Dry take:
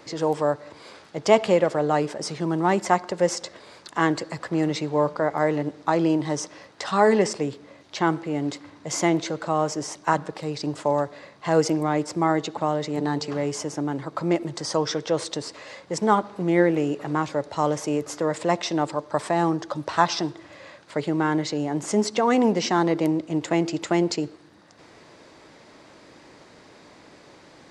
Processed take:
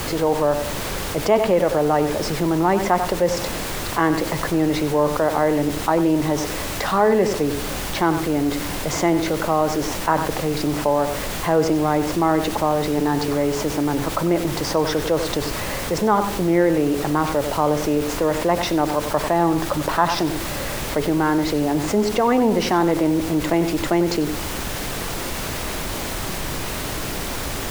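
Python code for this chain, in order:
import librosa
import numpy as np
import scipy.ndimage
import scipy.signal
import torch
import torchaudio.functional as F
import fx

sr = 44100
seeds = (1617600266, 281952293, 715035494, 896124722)

p1 = fx.lowpass(x, sr, hz=1700.0, slope=6)
p2 = fx.low_shelf(p1, sr, hz=120.0, db=-8.0)
p3 = fx.dmg_noise_colour(p2, sr, seeds[0], colour='pink', level_db=-41.0)
p4 = p3 + fx.echo_single(p3, sr, ms=94, db=-12.5, dry=0)
y = fx.env_flatten(p4, sr, amount_pct=50)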